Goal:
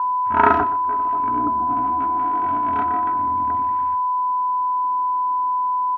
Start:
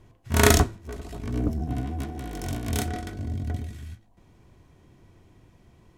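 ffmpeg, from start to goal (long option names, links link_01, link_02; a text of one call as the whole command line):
ffmpeg -i in.wav -filter_complex "[0:a]aecho=1:1:3.1:0.68,asplit=2[link_01][link_02];[link_02]acompressor=threshold=-30dB:ratio=6,volume=0.5dB[link_03];[link_01][link_03]amix=inputs=2:normalize=0,aecho=1:1:123|246:0.168|0.0319,aeval=exprs='val(0)+0.0562*sin(2*PI*1000*n/s)':channel_layout=same,highpass=230,equalizer=frequency=230:width_type=q:width=4:gain=-4,equalizer=frequency=370:width_type=q:width=4:gain=-6,equalizer=frequency=580:width_type=q:width=4:gain=-8,equalizer=frequency=920:width_type=q:width=4:gain=10,equalizer=frequency=1400:width_type=q:width=4:gain=10,equalizer=frequency=1900:width_type=q:width=4:gain=-7,lowpass=frequency=2000:width=0.5412,lowpass=frequency=2000:width=1.3066" out.wav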